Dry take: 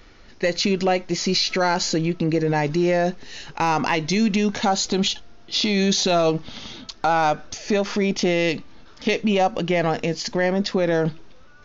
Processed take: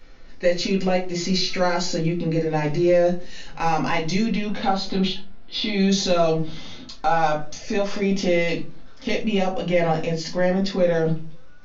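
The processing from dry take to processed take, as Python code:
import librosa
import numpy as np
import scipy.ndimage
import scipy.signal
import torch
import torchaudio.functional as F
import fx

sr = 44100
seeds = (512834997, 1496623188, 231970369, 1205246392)

y = fx.lowpass(x, sr, hz=4500.0, slope=24, at=(4.25, 5.89))
y = fx.room_shoebox(y, sr, seeds[0], volume_m3=140.0, walls='furnished', distance_m=2.1)
y = y * 10.0 ** (-7.0 / 20.0)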